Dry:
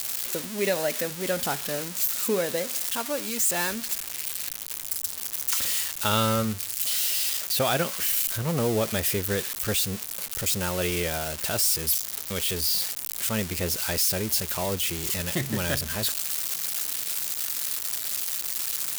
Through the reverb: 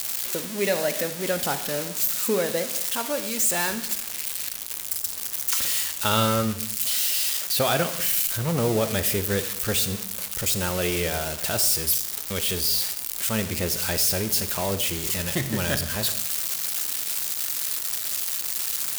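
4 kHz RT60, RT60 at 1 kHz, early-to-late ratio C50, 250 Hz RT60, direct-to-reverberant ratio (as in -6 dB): 0.65 s, 0.70 s, 12.0 dB, 0.90 s, 10.5 dB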